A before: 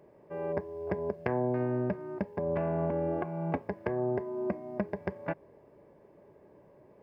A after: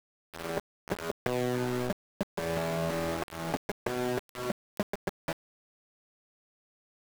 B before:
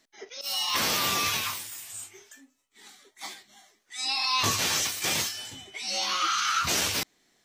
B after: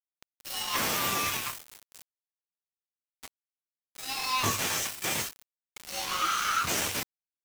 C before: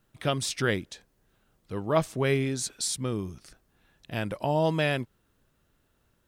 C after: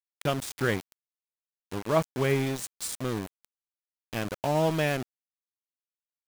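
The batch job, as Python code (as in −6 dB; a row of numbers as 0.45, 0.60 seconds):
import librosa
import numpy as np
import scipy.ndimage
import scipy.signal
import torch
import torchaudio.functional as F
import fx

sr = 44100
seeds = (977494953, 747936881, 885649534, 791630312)

y = fx.dynamic_eq(x, sr, hz=4400.0, q=1.3, threshold_db=-43.0, ratio=4.0, max_db=-7)
y = np.where(np.abs(y) >= 10.0 ** (-30.5 / 20.0), y, 0.0)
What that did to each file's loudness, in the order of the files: −1.0, −3.0, −1.0 LU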